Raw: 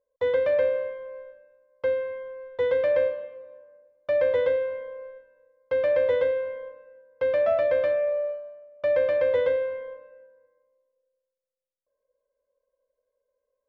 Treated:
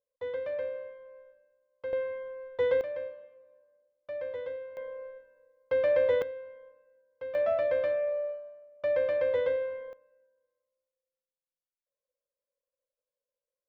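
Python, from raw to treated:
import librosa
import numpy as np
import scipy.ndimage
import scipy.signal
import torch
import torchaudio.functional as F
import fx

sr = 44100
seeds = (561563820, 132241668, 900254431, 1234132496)

y = fx.gain(x, sr, db=fx.steps((0.0, -11.5), (1.93, -2.5), (2.81, -14.0), (4.77, -2.5), (6.22, -14.0), (7.35, -5.0), (9.93, -16.0)))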